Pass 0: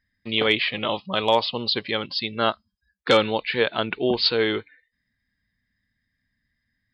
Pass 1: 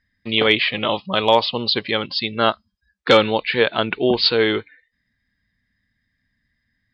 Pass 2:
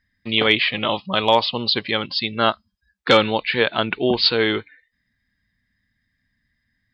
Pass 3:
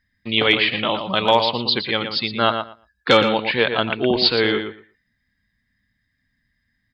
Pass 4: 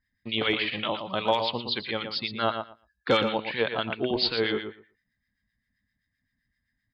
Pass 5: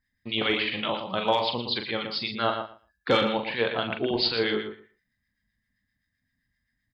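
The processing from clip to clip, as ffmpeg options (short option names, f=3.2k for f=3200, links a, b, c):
-af "lowpass=6.3k,volume=4.5dB"
-af "equalizer=f=460:t=o:w=0.77:g=-3"
-filter_complex "[0:a]asplit=2[a][b];[b]adelay=116,lowpass=f=3.4k:p=1,volume=-7dB,asplit=2[c][d];[d]adelay=116,lowpass=f=3.4k:p=1,volume=0.16,asplit=2[e][f];[f]adelay=116,lowpass=f=3.4k:p=1,volume=0.16[g];[a][c][e][g]amix=inputs=4:normalize=0"
-filter_complex "[0:a]acrossover=split=1200[a][b];[a]aeval=exprs='val(0)*(1-0.7/2+0.7/2*cos(2*PI*7.7*n/s))':c=same[c];[b]aeval=exprs='val(0)*(1-0.7/2-0.7/2*cos(2*PI*7.7*n/s))':c=same[d];[c][d]amix=inputs=2:normalize=0,volume=-5dB"
-filter_complex "[0:a]asplit=2[a][b];[b]adelay=42,volume=-7dB[c];[a][c]amix=inputs=2:normalize=0"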